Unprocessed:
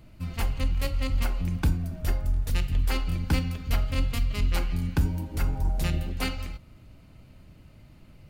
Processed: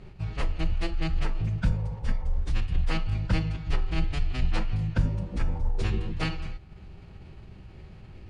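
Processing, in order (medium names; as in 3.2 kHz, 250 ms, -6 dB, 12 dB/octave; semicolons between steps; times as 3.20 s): spectral replace 1.66–2.35 s, 470–960 Hz before; formant-preserving pitch shift -8.5 st; in parallel at +2.5 dB: compression, threshold -46 dBFS, peak gain reduction 25 dB; on the sum: distance through air 95 m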